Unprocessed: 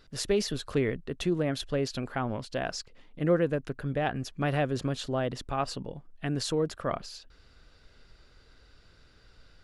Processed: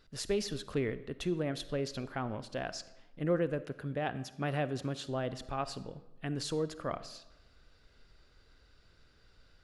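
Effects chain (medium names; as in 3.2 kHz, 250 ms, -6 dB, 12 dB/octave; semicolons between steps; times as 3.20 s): 3.63–5.07 s: high-pass 78 Hz; on a send: reverberation RT60 1.0 s, pre-delay 10 ms, DRR 14.5 dB; on the sum: trim -5.5 dB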